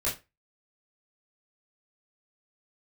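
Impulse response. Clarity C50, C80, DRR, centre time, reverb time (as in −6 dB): 9.5 dB, 17.5 dB, −8.0 dB, 27 ms, 0.25 s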